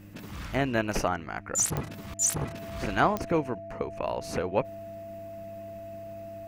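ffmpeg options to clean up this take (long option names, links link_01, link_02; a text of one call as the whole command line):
ffmpeg -i in.wav -af "adeclick=threshold=4,bandreject=frequency=101.4:width_type=h:width=4,bandreject=frequency=202.8:width_type=h:width=4,bandreject=frequency=304.2:width_type=h:width=4,bandreject=frequency=670:width=30" out.wav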